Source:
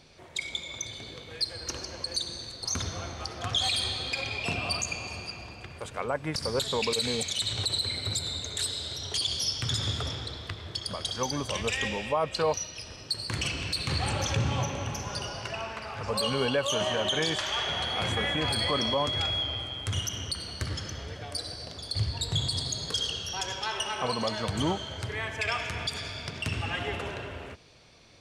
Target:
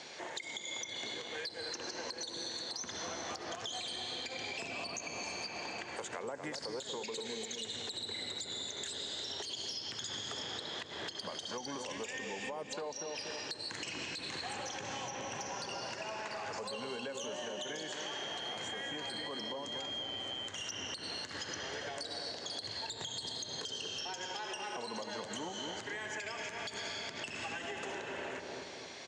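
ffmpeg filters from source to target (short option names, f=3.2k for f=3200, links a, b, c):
-filter_complex "[0:a]asetrate=42777,aresample=44100,acrossover=split=420|4800[a][b][c];[a]acompressor=threshold=-36dB:ratio=4[d];[b]acompressor=threshold=-44dB:ratio=4[e];[c]acompressor=threshold=-49dB:ratio=4[f];[d][e][f]amix=inputs=3:normalize=0,highpass=310,equalizer=f=850:t=q:w=4:g=4,equalizer=f=1.3k:t=q:w=4:g=-6,equalizer=f=2.3k:t=q:w=4:g=-5,equalizer=f=6.8k:t=q:w=4:g=9,lowpass=f=8.3k:w=0.5412,lowpass=f=8.3k:w=1.3066,asplit=2[g][h];[h]adelay=239,lowpass=f=930:p=1,volume=-6dB,asplit=2[i][j];[j]adelay=239,lowpass=f=930:p=1,volume=0.55,asplit=2[k][l];[l]adelay=239,lowpass=f=930:p=1,volume=0.55,asplit=2[m][n];[n]adelay=239,lowpass=f=930:p=1,volume=0.55,asplit=2[o][p];[p]adelay=239,lowpass=f=930:p=1,volume=0.55,asplit=2[q][r];[r]adelay=239,lowpass=f=930:p=1,volume=0.55,asplit=2[s][t];[t]adelay=239,lowpass=f=930:p=1,volume=0.55[u];[g][i][k][m][o][q][s][u]amix=inputs=8:normalize=0,asplit=2[v][w];[w]asoftclip=type=tanh:threshold=-29.5dB,volume=-5.5dB[x];[v][x]amix=inputs=2:normalize=0,equalizer=f=1.8k:w=1.1:g=8,alimiter=level_in=3dB:limit=-24dB:level=0:latency=1:release=239,volume=-3dB,acompressor=threshold=-41dB:ratio=6,volume=3dB"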